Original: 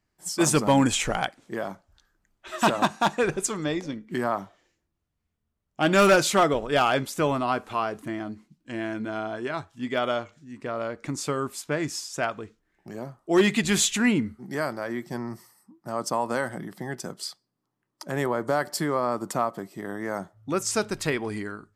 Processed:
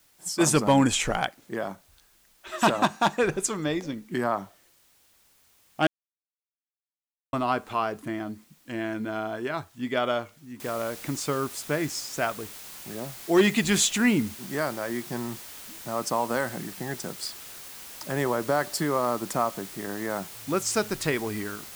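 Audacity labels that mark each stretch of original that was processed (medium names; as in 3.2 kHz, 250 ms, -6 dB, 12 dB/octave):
5.870000	7.330000	mute
10.600000	10.600000	noise floor step -62 dB -43 dB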